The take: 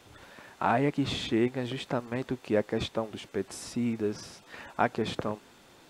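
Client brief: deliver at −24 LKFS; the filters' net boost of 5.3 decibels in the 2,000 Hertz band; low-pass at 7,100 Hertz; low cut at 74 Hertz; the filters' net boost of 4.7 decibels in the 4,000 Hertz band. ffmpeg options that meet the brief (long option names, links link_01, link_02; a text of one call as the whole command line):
ffmpeg -i in.wav -af "highpass=74,lowpass=7100,equalizer=frequency=2000:width_type=o:gain=6,equalizer=frequency=4000:width_type=o:gain=4,volume=6dB" out.wav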